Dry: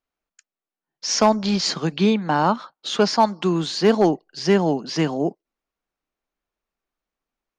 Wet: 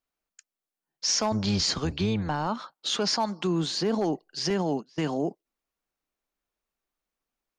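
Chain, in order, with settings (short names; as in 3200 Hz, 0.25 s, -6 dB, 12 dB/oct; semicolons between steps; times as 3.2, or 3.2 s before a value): 1.31–2.47 octaver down 1 oct, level -3 dB; 3.47–3.99 tilt shelf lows +3 dB; 4.5–5.12 gate -25 dBFS, range -28 dB; limiter -15.5 dBFS, peak gain reduction 11 dB; high shelf 4600 Hz +5.5 dB; gain -3 dB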